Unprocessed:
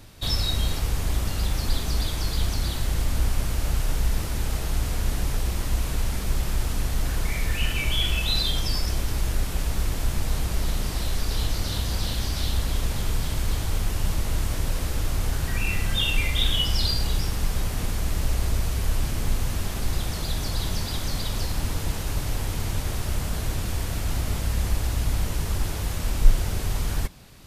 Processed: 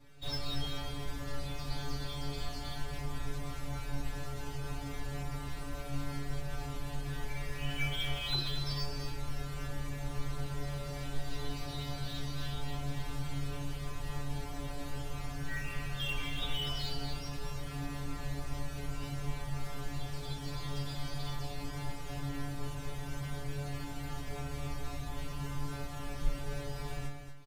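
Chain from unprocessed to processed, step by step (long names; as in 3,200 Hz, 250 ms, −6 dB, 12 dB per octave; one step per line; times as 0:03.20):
high-shelf EQ 5,800 Hz −11.5 dB
stiff-string resonator 140 Hz, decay 0.64 s, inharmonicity 0.002
in parallel at −11.5 dB: sample-and-hold swept by an LFO 8×, swing 100% 3.6 Hz
on the sum: single-tap delay 234 ms −9 dB
level +4 dB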